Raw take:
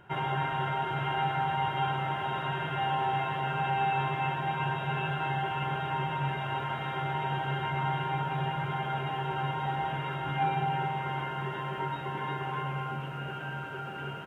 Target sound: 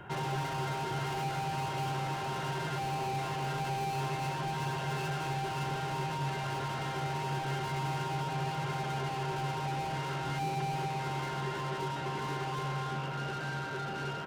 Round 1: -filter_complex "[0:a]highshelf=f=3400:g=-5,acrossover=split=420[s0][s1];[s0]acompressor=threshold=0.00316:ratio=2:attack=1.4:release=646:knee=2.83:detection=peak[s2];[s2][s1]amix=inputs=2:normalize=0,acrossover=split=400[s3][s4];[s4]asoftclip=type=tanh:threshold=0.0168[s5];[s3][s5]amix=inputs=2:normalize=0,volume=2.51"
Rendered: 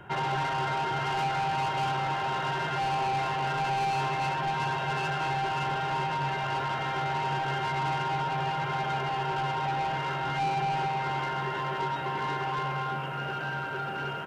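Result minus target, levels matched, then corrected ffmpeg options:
saturation: distortion -5 dB
-filter_complex "[0:a]highshelf=f=3400:g=-5,acrossover=split=420[s0][s1];[s0]acompressor=threshold=0.00316:ratio=2:attack=1.4:release=646:knee=2.83:detection=peak[s2];[s2][s1]amix=inputs=2:normalize=0,acrossover=split=400[s3][s4];[s4]asoftclip=type=tanh:threshold=0.00531[s5];[s3][s5]amix=inputs=2:normalize=0,volume=2.51"

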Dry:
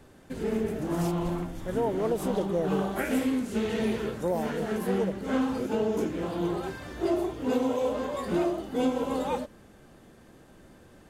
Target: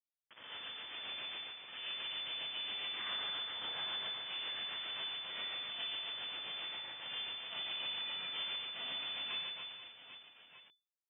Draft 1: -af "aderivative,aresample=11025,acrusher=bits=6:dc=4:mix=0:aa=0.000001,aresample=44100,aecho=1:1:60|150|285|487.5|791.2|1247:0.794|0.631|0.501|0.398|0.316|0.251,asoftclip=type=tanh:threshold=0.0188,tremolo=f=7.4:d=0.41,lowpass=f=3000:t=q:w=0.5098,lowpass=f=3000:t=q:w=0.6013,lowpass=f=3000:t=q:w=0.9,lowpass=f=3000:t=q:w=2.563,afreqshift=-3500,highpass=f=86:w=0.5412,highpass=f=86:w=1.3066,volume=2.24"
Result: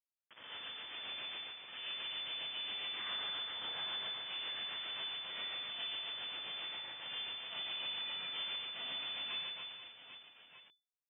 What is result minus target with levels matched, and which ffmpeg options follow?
saturation: distortion +14 dB
-af "aderivative,aresample=11025,acrusher=bits=6:dc=4:mix=0:aa=0.000001,aresample=44100,aecho=1:1:60|150|285|487.5|791.2|1247:0.794|0.631|0.501|0.398|0.316|0.251,asoftclip=type=tanh:threshold=0.0447,tremolo=f=7.4:d=0.41,lowpass=f=3000:t=q:w=0.5098,lowpass=f=3000:t=q:w=0.6013,lowpass=f=3000:t=q:w=0.9,lowpass=f=3000:t=q:w=2.563,afreqshift=-3500,highpass=f=86:w=0.5412,highpass=f=86:w=1.3066,volume=2.24"

